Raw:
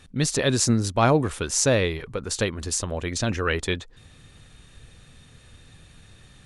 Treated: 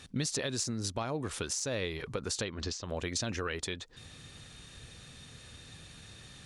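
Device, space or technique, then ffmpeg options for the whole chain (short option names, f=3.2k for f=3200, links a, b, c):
broadcast voice chain: -filter_complex "[0:a]highpass=f=82:p=1,deesser=0.35,acompressor=threshold=-31dB:ratio=4,equalizer=f=5.1k:t=o:w=1.3:g=5.5,alimiter=limit=-22.5dB:level=0:latency=1:release=204,asettb=1/sr,asplit=3[a][b][c];[a]atrim=end=2.414[d];[b]atrim=start=2.41:end=2.85,asetpts=PTS-STARTPTS,afade=t=in:d=0.004:c=qsin,afade=t=out:st=0.436:d=0.004:c=qsin,lowpass=f=5.8k:w=0.5412,lowpass=f=5.8k:w=1.3066[e];[c]atrim=start=2.846[f];[d][e]acrossfade=d=0.004:c1=hsin:c2=qsin[g];[g][f]acrossfade=d=0.004:c1=qsin:c2=hsin"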